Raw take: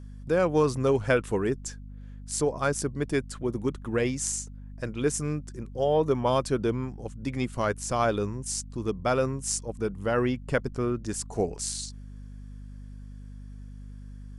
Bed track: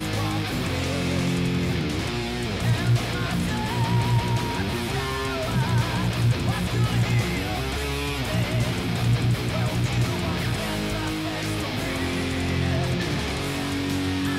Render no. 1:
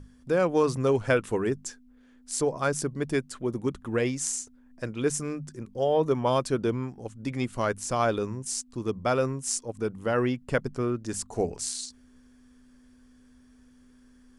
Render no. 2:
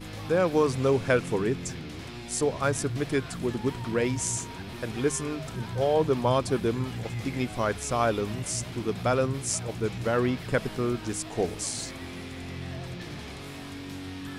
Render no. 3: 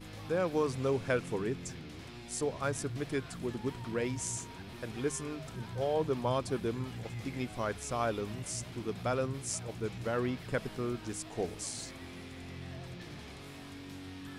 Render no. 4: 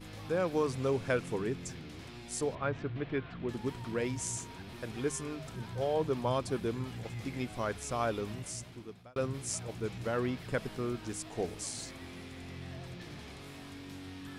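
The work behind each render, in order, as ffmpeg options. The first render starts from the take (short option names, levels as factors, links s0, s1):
-af "bandreject=f=50:t=h:w=6,bandreject=f=100:t=h:w=6,bandreject=f=150:t=h:w=6,bandreject=f=200:t=h:w=6"
-filter_complex "[1:a]volume=0.224[s0];[0:a][s0]amix=inputs=2:normalize=0"
-af "volume=0.422"
-filter_complex "[0:a]asettb=1/sr,asplit=3[s0][s1][s2];[s0]atrim=end=2.554[s3];[s1]atrim=start=2.55:end=3.49,asetpts=PTS-STARTPTS,afade=t=in:d=0.004:c=qsin,afade=t=out:st=0.936:d=0.004:c=qsin,lowpass=f=3300:w=0.5412,lowpass=f=3300:w=1.3066[s4];[s2]atrim=start=3.486[s5];[s3][s4]acrossfade=d=0.004:c1=hsin:c2=qsin[s6];[s6][s5]acrossfade=d=0.004:c1=qsin:c2=hsin,asplit=2[s7][s8];[s7]atrim=end=9.16,asetpts=PTS-STARTPTS,afade=t=out:st=8.3:d=0.86[s9];[s8]atrim=start=9.16,asetpts=PTS-STARTPTS,afade=t=in:d=0.004:c=hsin[s10];[s9][s10]concat=n=2:v=0:a=1"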